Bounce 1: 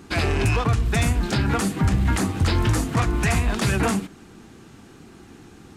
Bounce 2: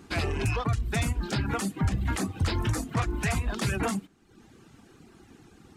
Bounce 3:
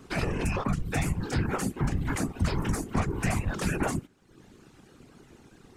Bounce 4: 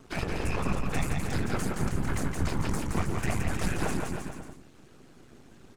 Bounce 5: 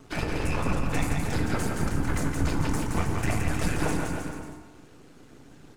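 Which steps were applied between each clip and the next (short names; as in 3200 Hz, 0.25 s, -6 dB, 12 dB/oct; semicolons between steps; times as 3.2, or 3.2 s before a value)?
reverb removal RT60 0.82 s; gain -5.5 dB
dynamic EQ 3700 Hz, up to -7 dB, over -52 dBFS, Q 1.8; whisperiser
half-wave gain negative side -12 dB; bouncing-ball echo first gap 0.17 s, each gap 0.85×, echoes 5
FDN reverb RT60 1.4 s, low-frequency decay 0.75×, high-frequency decay 0.6×, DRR 5 dB; gain +1.5 dB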